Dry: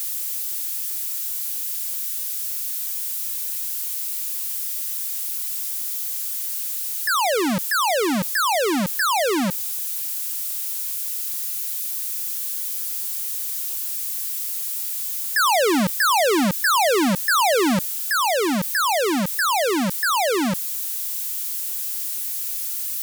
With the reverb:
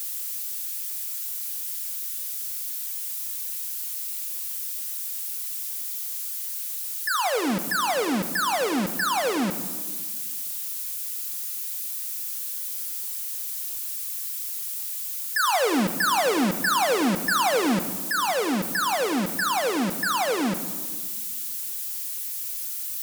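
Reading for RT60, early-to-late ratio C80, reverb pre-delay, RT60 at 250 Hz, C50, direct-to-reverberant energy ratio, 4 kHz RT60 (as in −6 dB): 1.6 s, 11.0 dB, 4 ms, 2.0 s, 10.0 dB, 5.5 dB, 1.0 s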